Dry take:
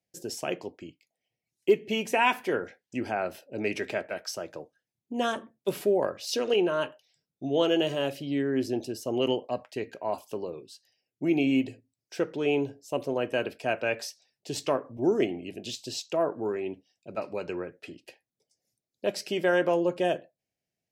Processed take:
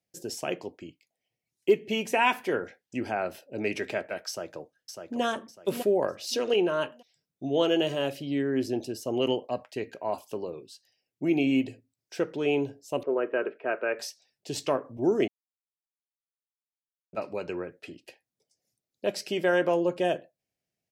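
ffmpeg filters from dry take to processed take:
ffmpeg -i in.wav -filter_complex "[0:a]asplit=2[link_01][link_02];[link_02]afade=type=in:start_time=4.28:duration=0.01,afade=type=out:start_time=5.22:duration=0.01,aecho=0:1:600|1200|1800|2400:0.501187|0.150356|0.0451069|0.0135321[link_03];[link_01][link_03]amix=inputs=2:normalize=0,asettb=1/sr,asplit=3[link_04][link_05][link_06];[link_04]atrim=end=13.034[link_07];[link_05]atrim=start=13.03:end=13.99,asetpts=PTS-STARTPTS,afade=type=in:duration=0.004:curve=qsin,afade=type=out:start_time=0.956:duration=0.004:curve=qsin,highpass=340,equalizer=frequency=390:width_type=q:width=4:gain=8,equalizer=frequency=770:width_type=q:width=4:gain=-5,equalizer=frequency=1300:width_type=q:width=4:gain=6,lowpass=frequency=2100:width=0.5412,lowpass=frequency=2100:width=1.3066[link_08];[link_06]atrim=start=13.986[link_09];[link_07][link_08]acrossfade=duration=0.004:curve1=hsin:curve2=qsin[link_10];[link_10][link_09]acrossfade=duration=0.004:curve1=qsin:curve2=hsin,asplit=3[link_11][link_12][link_13];[link_11]atrim=end=15.28,asetpts=PTS-STARTPTS,afade=type=out:start_time=15.276:duration=0.004:curve=hsin[link_14];[link_12]atrim=start=15.28:end=17.13,asetpts=PTS-STARTPTS,volume=0[link_15];[link_13]atrim=start=17.13,asetpts=PTS-STARTPTS,afade=type=in:duration=0.004:curve=hsin[link_16];[link_14][link_15][link_16]concat=n=3:v=0:a=1" out.wav

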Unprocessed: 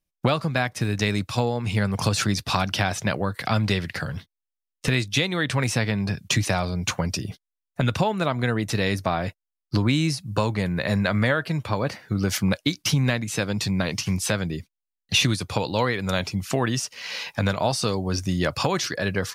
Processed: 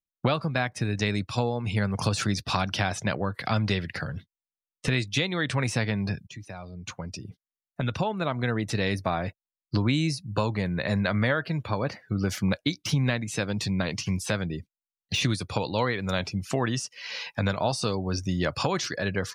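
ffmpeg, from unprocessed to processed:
ffmpeg -i in.wav -filter_complex "[0:a]asplit=2[link_01][link_02];[link_01]atrim=end=6.27,asetpts=PTS-STARTPTS,afade=type=out:start_time=6.266:duration=0.004:curve=hsin:silence=0.11885[link_03];[link_02]atrim=start=6.27,asetpts=PTS-STARTPTS,afade=type=in:duration=2.33:silence=0.11885[link_04];[link_03][link_04]concat=n=2:v=0:a=1,deesser=0.5,afftdn=noise_reduction=15:noise_floor=-43,volume=-3dB" out.wav

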